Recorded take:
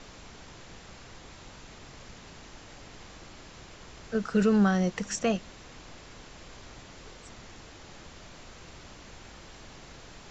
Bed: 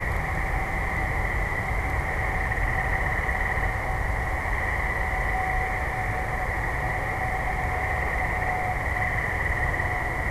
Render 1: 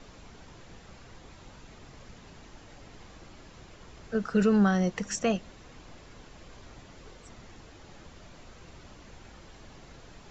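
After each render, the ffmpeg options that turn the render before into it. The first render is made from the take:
-af "afftdn=nr=6:nf=-49"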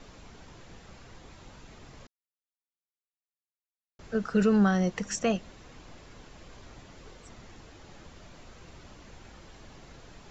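-filter_complex "[0:a]asplit=3[s0][s1][s2];[s0]atrim=end=2.07,asetpts=PTS-STARTPTS,afade=t=out:st=2.066:d=0.004:c=hsin[s3];[s1]atrim=start=2.07:end=3.99,asetpts=PTS-STARTPTS,volume=0[s4];[s2]atrim=start=3.99,asetpts=PTS-STARTPTS,afade=t=in:d=0.004:c=hsin[s5];[s3][s4][s5]concat=n=3:v=0:a=1"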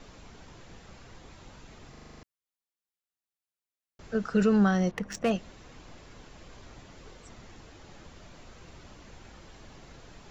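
-filter_complex "[0:a]asettb=1/sr,asplit=3[s0][s1][s2];[s0]atrim=end=4.914[s3];[s1]atrim=start=4.91:end=5.31,asetpts=PTS-STARTPTS,afade=t=in:d=0.004:c=qsin,afade=t=out:st=0.396:d=0.004:c=qsin,adynamicsmooth=sensitivity=5.5:basefreq=1500[s4];[s2]atrim=start=5.306[s5];[s3][s4]acrossfade=d=0.004:c1=hsin:c2=qsin[s6];[s6][s5]acrossfade=d=0.004:c1=qsin:c2=hsin,asplit=9[s7][s8][s9][s10][s11][s12][s13][s14][s15];[s7]atrim=end=1.952[s16];[s8]atrim=start=1.908:end=1.952[s17];[s9]atrim=start=1.908:end=1.952[s18];[s10]atrim=start=1.908:end=1.952[s19];[s11]atrim=start=1.908:end=1.952[s20];[s12]atrim=start=1.908:end=1.952[s21];[s13]atrim=start=1.908:end=1.952[s22];[s14]atrim=start=1.908:end=1.952[s23];[s15]atrim=start=2.228[s24];[s16][s17]acrossfade=d=0.004:c1=hsin:c2=hsin[s25];[s25][s18]acrossfade=d=0.004:c1=hsin:c2=hsin[s26];[s26][s19]acrossfade=d=0.004:c1=hsin:c2=hsin[s27];[s27][s20]acrossfade=d=0.004:c1=hsin:c2=hsin[s28];[s28][s21]acrossfade=d=0.004:c1=hsin:c2=hsin[s29];[s29][s22]acrossfade=d=0.004:c1=hsin:c2=hsin[s30];[s30][s23]acrossfade=d=0.004:c1=hsin:c2=hsin[s31];[s31][s24]acrossfade=d=0.004:c1=hsin:c2=hsin"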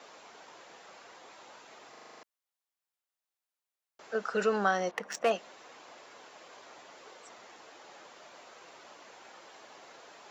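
-af "highpass=510,equalizer=f=750:w=0.62:g=4.5"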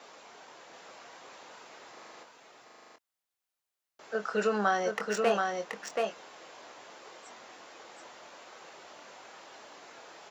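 -filter_complex "[0:a]asplit=2[s0][s1];[s1]adelay=24,volume=0.376[s2];[s0][s2]amix=inputs=2:normalize=0,asplit=2[s3][s4];[s4]aecho=0:1:729:0.668[s5];[s3][s5]amix=inputs=2:normalize=0"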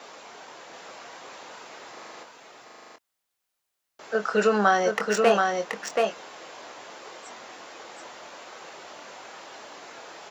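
-af "volume=2.24"

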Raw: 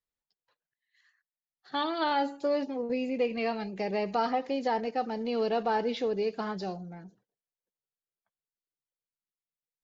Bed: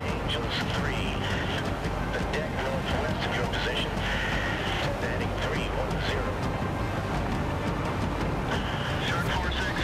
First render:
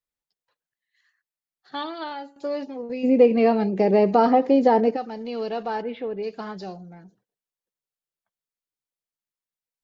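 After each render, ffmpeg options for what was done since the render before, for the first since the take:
-filter_complex "[0:a]asplit=3[s0][s1][s2];[s0]afade=t=out:st=3.03:d=0.02[s3];[s1]equalizer=f=310:w=0.31:g=15,afade=t=in:st=3.03:d=0.02,afade=t=out:st=4.95:d=0.02[s4];[s2]afade=t=in:st=4.95:d=0.02[s5];[s3][s4][s5]amix=inputs=3:normalize=0,asplit=3[s6][s7][s8];[s6]afade=t=out:st=5.81:d=0.02[s9];[s7]lowpass=f=2800:w=0.5412,lowpass=f=2800:w=1.3066,afade=t=in:st=5.81:d=0.02,afade=t=out:st=6.22:d=0.02[s10];[s8]afade=t=in:st=6.22:d=0.02[s11];[s9][s10][s11]amix=inputs=3:normalize=0,asplit=2[s12][s13];[s12]atrim=end=2.36,asetpts=PTS-STARTPTS,afade=t=out:st=1.79:d=0.57:silence=0.16788[s14];[s13]atrim=start=2.36,asetpts=PTS-STARTPTS,afade=t=in:d=0.004:c=hsin:silence=0.16788[s15];[s14][s15]concat=n=2:v=0:a=1"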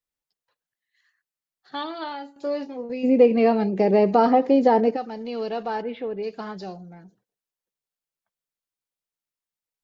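-filter_complex "[0:a]asettb=1/sr,asplit=3[s0][s1][s2];[s0]atrim=end=1.874[s3];[s1]atrim=start=1.87:end=2.85,asetpts=PTS-STARTPTS,afade=t=in:d=0.004:c=qsin,afade=t=out:st=0.976:d=0.004:c=qsin,asplit=2[s4][s5];[s5]adelay=28,volume=0.282[s6];[s4][s6]amix=inputs=2:normalize=0,atrim=end_sample=43218[s7];[s2]atrim=start=2.846[s8];[s3][s7]acrossfade=d=0.004:c1=hsin:c2=qsin[s9];[s9][s8]acrossfade=d=0.004:c1=qsin:c2=hsin"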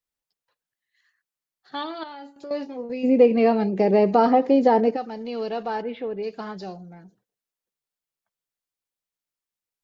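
-filter_complex "[0:a]asettb=1/sr,asplit=3[s0][s1][s2];[s0]atrim=end=2.034[s3];[s1]atrim=start=2.03:end=2.51,asetpts=PTS-STARTPTS,afade=t=in:d=0.004:c=qsin,afade=t=out:st=0.476:d=0.004:c=qsin,acompressor=threshold=0.0178:ratio=6:attack=3.2:release=140:knee=1:detection=peak[s4];[s2]atrim=start=2.506[s5];[s3][s4]acrossfade=d=0.004:c1=hsin:c2=qsin[s6];[s6][s5]acrossfade=d=0.004:c1=qsin:c2=hsin"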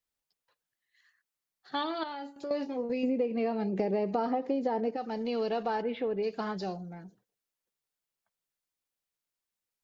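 -af "acompressor=threshold=0.0447:ratio=8"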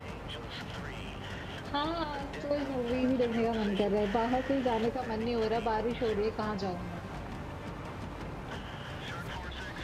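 -filter_complex "[1:a]volume=0.251[s0];[0:a][s0]amix=inputs=2:normalize=0"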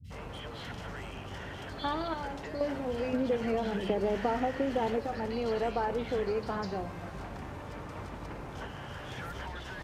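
-filter_complex "[0:a]acrossover=split=180|3200[s0][s1][s2];[s2]adelay=40[s3];[s1]adelay=100[s4];[s0][s4][s3]amix=inputs=3:normalize=0"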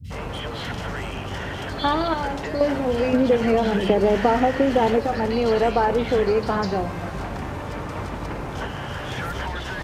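-af "volume=3.76"

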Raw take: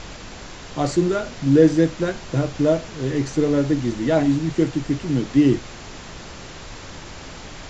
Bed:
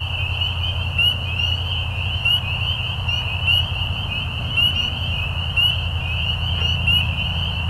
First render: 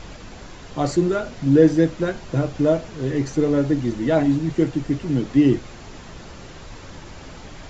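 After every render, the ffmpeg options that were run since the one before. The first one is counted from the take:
-af "afftdn=nr=6:nf=-38"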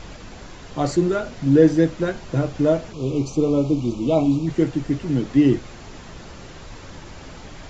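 -filter_complex "[0:a]asplit=3[s0][s1][s2];[s0]afade=t=out:st=2.92:d=0.02[s3];[s1]asuperstop=centerf=1700:order=12:qfactor=1.8,afade=t=in:st=2.92:d=0.02,afade=t=out:st=4.46:d=0.02[s4];[s2]afade=t=in:st=4.46:d=0.02[s5];[s3][s4][s5]amix=inputs=3:normalize=0"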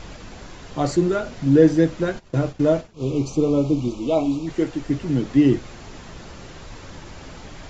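-filter_complex "[0:a]asplit=3[s0][s1][s2];[s0]afade=t=out:st=2.18:d=0.02[s3];[s1]agate=range=0.0224:threshold=0.0398:ratio=3:release=100:detection=peak,afade=t=in:st=2.18:d=0.02,afade=t=out:st=3.19:d=0.02[s4];[s2]afade=t=in:st=3.19:d=0.02[s5];[s3][s4][s5]amix=inputs=3:normalize=0,asettb=1/sr,asplit=3[s6][s7][s8];[s6]atrim=end=3.884[s9];[s7]atrim=start=3.88:end=4.9,asetpts=PTS-STARTPTS,afade=t=in:d=0.004:c=qsin,afade=t=out:st=1.016:d=0.004:c=qsin,equalizer=f=140:w=0.9:g=-9[s10];[s8]atrim=start=4.896[s11];[s9][s10]acrossfade=d=0.004:c1=hsin:c2=qsin[s12];[s12][s11]acrossfade=d=0.004:c1=qsin:c2=hsin"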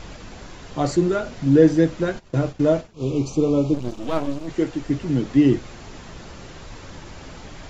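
-filter_complex "[0:a]asplit=3[s0][s1][s2];[s0]afade=t=out:st=3.73:d=0.02[s3];[s1]aeval=exprs='max(val(0),0)':c=same,afade=t=in:st=3.73:d=0.02,afade=t=out:st=4.47:d=0.02[s4];[s2]afade=t=in:st=4.47:d=0.02[s5];[s3][s4][s5]amix=inputs=3:normalize=0"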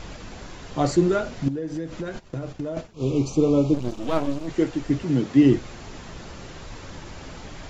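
-filter_complex "[0:a]asettb=1/sr,asplit=3[s0][s1][s2];[s0]atrim=end=1.484[s3];[s1]atrim=start=1.48:end=2.77,asetpts=PTS-STARTPTS,afade=t=in:d=0.004:c=qsin,afade=t=out:st=1.286:d=0.004:c=qsin,acompressor=threshold=0.0501:ratio=10:attack=3.2:release=140:knee=1:detection=peak[s4];[s2]atrim=start=2.766[s5];[s3][s4]acrossfade=d=0.004:c1=hsin:c2=qsin[s6];[s6][s5]acrossfade=d=0.004:c1=qsin:c2=hsin,asettb=1/sr,asplit=3[s7][s8][s9];[s7]atrim=end=5.034[s10];[s8]atrim=start=5.03:end=5.43,asetpts=PTS-STARTPTS,afade=t=in:d=0.004:c=qsin,afade=t=out:st=0.396:d=0.004:c=qsin,highpass=99[s11];[s9]atrim=start=5.426[s12];[s10][s11]acrossfade=d=0.004:c1=hsin:c2=qsin[s13];[s13][s12]acrossfade=d=0.004:c1=qsin:c2=hsin"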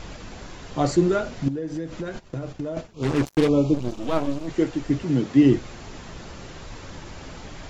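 -filter_complex "[0:a]asplit=3[s0][s1][s2];[s0]afade=t=out:st=3.02:d=0.02[s3];[s1]acrusher=bits=3:mix=0:aa=0.5,afade=t=in:st=3.02:d=0.02,afade=t=out:st=3.47:d=0.02[s4];[s2]afade=t=in:st=3.47:d=0.02[s5];[s3][s4][s5]amix=inputs=3:normalize=0"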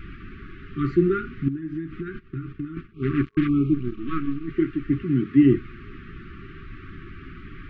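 -af "lowpass=f=2500:w=0.5412,lowpass=f=2500:w=1.3066,afftfilt=real='re*(1-between(b*sr/4096,410,1100))':imag='im*(1-between(b*sr/4096,410,1100))':win_size=4096:overlap=0.75"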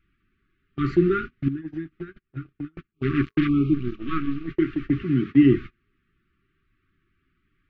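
-af "agate=range=0.0282:threshold=0.0316:ratio=16:detection=peak,highshelf=f=2300:g=8"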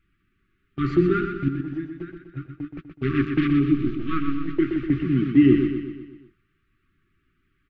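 -af "aecho=1:1:124|248|372|496|620|744:0.447|0.237|0.125|0.0665|0.0352|0.0187"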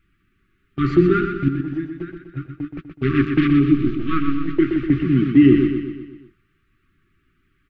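-af "volume=1.68,alimiter=limit=0.708:level=0:latency=1"

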